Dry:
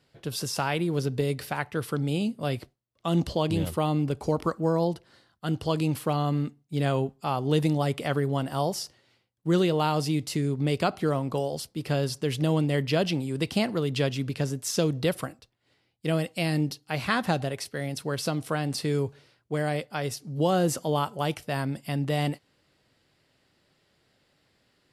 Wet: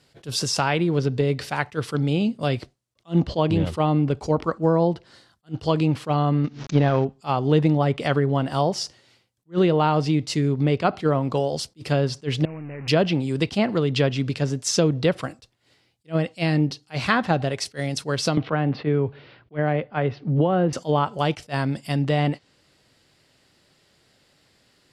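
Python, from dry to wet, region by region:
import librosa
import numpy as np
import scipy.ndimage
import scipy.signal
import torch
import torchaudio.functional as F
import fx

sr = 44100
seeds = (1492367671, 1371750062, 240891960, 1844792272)

y = fx.chain(x, sr, fx.cvsd(bps=32000),
    fx.transient(attack_db=8, sustain_db=-7),
    fx.pre_swell(db_per_s=130.0), at=(6.44, 7.05))
y = fx.chain(y, sr, fx.zero_step(step_db=-27.0),
    fx.level_steps(step_db=20),
    fx.resample_bad(factor=8, down='none', up='filtered'), at=(12.45, 12.88))
y = fx.chain(y, sr, fx.bessel_lowpass(hz=2100.0, order=6),
    fx.band_squash(depth_pct=100), at=(18.37, 20.73))
y = fx.env_lowpass_down(y, sr, base_hz=2200.0, full_db=-21.0)
y = fx.peak_eq(y, sr, hz=7100.0, db=5.5, octaves=1.6)
y = fx.attack_slew(y, sr, db_per_s=400.0)
y = F.gain(torch.from_numpy(y), 5.5).numpy()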